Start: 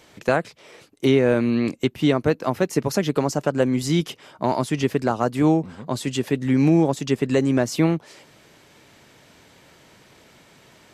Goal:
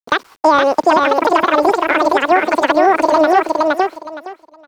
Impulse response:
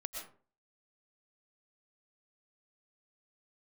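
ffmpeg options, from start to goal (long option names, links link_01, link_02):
-filter_complex "[0:a]lowpass=1400,agate=range=-33dB:threshold=-41dB:ratio=3:detection=peak,asplit=2[link_01][link_02];[link_02]acompressor=threshold=-25dB:ratio=6,volume=-1dB[link_03];[link_01][link_03]amix=inputs=2:normalize=0,acrusher=bits=8:mix=0:aa=0.000001,aecho=1:1:1090|2180|3270:0.708|0.135|0.0256,asetrate=103194,aresample=44100,alimiter=level_in=6.5dB:limit=-1dB:release=50:level=0:latency=1,volume=-1dB"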